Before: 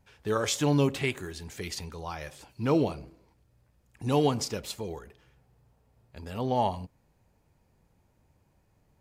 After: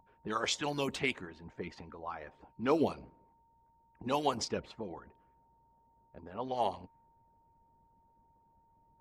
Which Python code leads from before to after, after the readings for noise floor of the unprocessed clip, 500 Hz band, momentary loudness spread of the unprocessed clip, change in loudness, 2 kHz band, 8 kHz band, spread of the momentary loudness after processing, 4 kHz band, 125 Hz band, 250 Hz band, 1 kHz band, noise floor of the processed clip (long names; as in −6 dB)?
−69 dBFS, −6.0 dB, 16 LU, −6.0 dB, −2.0 dB, −7.5 dB, 16 LU, −3.5 dB, −15.0 dB, −8.0 dB, −3.5 dB, −69 dBFS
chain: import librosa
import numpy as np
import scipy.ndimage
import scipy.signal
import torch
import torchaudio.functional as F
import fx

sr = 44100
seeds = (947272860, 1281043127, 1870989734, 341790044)

y = x + 10.0 ** (-46.0 / 20.0) * np.sin(2.0 * np.pi * 920.0 * np.arange(len(x)) / sr)
y = fx.env_lowpass(y, sr, base_hz=800.0, full_db=-20.5)
y = fx.hpss(y, sr, part='harmonic', gain_db=-18)